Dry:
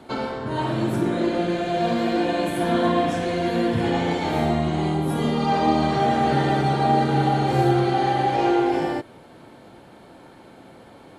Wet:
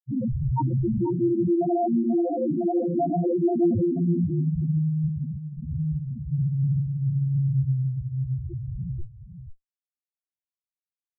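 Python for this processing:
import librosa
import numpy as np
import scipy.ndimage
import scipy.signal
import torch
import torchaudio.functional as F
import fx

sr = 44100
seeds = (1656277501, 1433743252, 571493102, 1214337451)

y = fx.schmitt(x, sr, flips_db=-27.0)
y = fx.filter_sweep_lowpass(y, sr, from_hz=4000.0, to_hz=130.0, start_s=2.17, end_s=4.58, q=1.2)
y = fx.spec_topn(y, sr, count=1)
y = y + 10.0 ** (-10.0 / 20.0) * np.pad(y, (int(485 * sr / 1000.0), 0))[:len(y)]
y = F.gain(torch.from_numpy(y), 8.5).numpy()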